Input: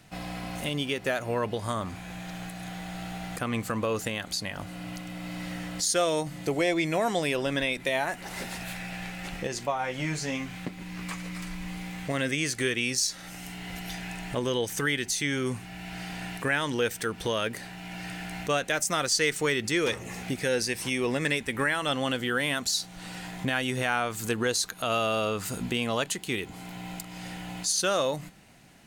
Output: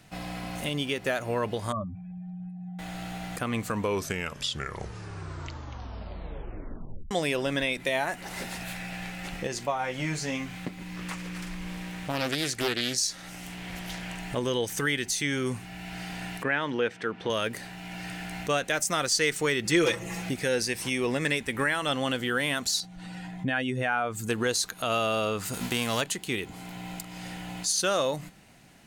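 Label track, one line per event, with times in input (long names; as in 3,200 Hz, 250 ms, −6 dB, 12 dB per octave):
1.720000	2.790000	expanding power law on the bin magnitudes exponent 2.8
3.580000	3.580000	tape stop 3.53 s
10.960000	14.180000	highs frequency-modulated by the lows depth 0.58 ms
16.430000	17.300000	band-pass filter 150–2,800 Hz
19.650000	20.290000	comb filter 6 ms, depth 82%
22.800000	24.290000	expanding power law on the bin magnitudes exponent 1.5
25.530000	26.000000	spectral envelope flattened exponent 0.6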